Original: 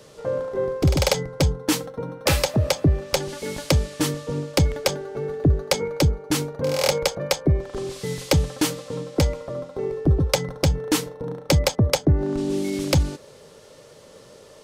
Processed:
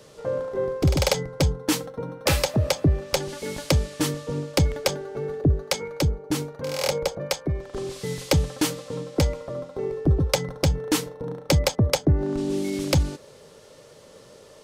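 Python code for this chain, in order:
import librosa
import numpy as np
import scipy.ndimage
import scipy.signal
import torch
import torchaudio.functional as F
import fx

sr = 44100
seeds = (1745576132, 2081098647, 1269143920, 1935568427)

y = fx.harmonic_tremolo(x, sr, hz=1.2, depth_pct=50, crossover_hz=900.0, at=(5.41, 7.74))
y = y * 10.0 ** (-1.5 / 20.0)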